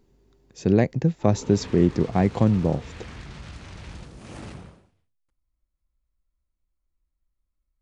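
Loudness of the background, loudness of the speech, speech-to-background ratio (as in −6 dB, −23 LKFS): −41.0 LKFS, −22.5 LKFS, 18.5 dB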